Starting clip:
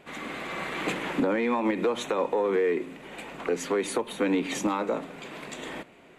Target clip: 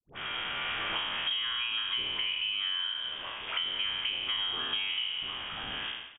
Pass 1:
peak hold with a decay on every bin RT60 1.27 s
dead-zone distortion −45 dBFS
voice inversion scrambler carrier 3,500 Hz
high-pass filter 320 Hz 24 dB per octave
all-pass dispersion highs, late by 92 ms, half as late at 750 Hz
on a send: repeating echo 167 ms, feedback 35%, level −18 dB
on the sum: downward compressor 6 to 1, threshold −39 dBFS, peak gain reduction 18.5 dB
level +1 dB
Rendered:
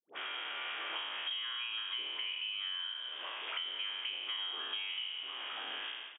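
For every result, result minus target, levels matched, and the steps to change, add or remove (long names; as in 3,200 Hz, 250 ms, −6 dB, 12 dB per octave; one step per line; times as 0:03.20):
downward compressor: peak gain reduction +6.5 dB; 250 Hz band −4.5 dB
change: downward compressor 6 to 1, threshold −31 dBFS, peak gain reduction 11.5 dB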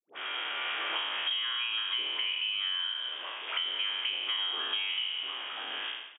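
250 Hz band −5.5 dB
remove: high-pass filter 320 Hz 24 dB per octave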